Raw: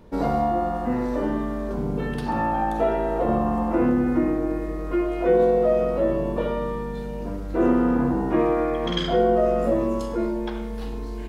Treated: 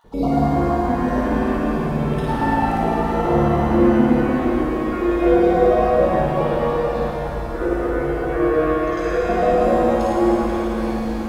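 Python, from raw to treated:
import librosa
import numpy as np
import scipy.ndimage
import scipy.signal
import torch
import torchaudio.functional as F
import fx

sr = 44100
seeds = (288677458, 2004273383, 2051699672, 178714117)

y = fx.spec_dropout(x, sr, seeds[0], share_pct=33)
y = fx.fixed_phaser(y, sr, hz=870.0, stages=6, at=(7.06, 9.29))
y = fx.room_flutter(y, sr, wall_m=9.4, rt60_s=1.1)
y = fx.dmg_crackle(y, sr, seeds[1], per_s=87.0, level_db=-53.0)
y = fx.rev_shimmer(y, sr, seeds[2], rt60_s=3.6, semitones=7, shimmer_db=-8, drr_db=-3.0)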